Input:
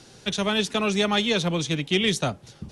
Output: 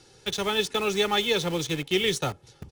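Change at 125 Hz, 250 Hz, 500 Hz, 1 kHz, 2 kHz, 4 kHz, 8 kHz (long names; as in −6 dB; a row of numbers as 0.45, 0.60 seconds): −5.5, −6.0, 0.0, −1.0, −2.0, −1.5, −1.0 decibels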